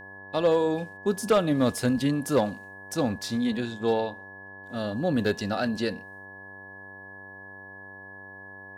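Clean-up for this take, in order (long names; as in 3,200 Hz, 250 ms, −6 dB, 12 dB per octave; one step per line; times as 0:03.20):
clipped peaks rebuilt −14.5 dBFS
hum removal 97 Hz, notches 11
notch filter 1,700 Hz, Q 30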